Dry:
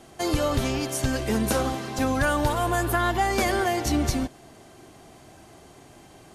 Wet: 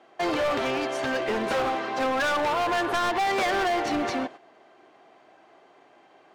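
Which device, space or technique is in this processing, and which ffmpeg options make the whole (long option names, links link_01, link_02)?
walkie-talkie: -af "highpass=460,lowpass=2500,asoftclip=type=hard:threshold=-29.5dB,agate=range=-9dB:threshold=-47dB:ratio=16:detection=peak,volume=7dB"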